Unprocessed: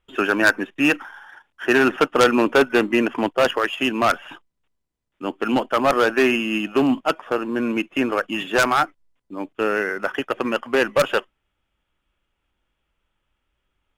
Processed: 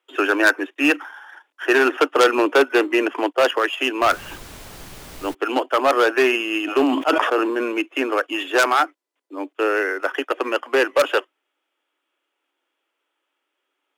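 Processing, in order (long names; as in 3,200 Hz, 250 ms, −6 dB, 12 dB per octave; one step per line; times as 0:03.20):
Butterworth high-pass 280 Hz 72 dB per octave
in parallel at −9 dB: hard clipping −14.5 dBFS, distortion −12 dB
0:04.01–0:05.33: on the sum: background noise pink −38 dBFS
0:06.62–0:07.81: level that may fall only so fast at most 36 dB per second
level −1 dB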